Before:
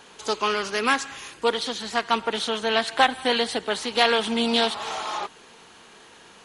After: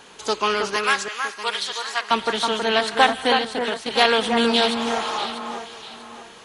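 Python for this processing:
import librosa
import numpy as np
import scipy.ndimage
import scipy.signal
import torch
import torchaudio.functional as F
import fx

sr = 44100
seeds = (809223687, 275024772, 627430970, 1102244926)

y = fx.highpass(x, sr, hz=1000.0, slope=12, at=(0.76, 2.11))
y = fx.level_steps(y, sr, step_db=14, at=(3.37, 3.91))
y = fx.echo_alternate(y, sr, ms=321, hz=2000.0, feedback_pct=56, wet_db=-5.0)
y = y * librosa.db_to_amplitude(2.5)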